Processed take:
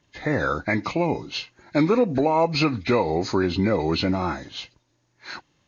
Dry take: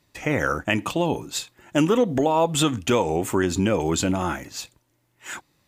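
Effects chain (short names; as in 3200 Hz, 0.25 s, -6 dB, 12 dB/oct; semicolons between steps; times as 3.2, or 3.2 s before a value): nonlinear frequency compression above 1400 Hz 1.5:1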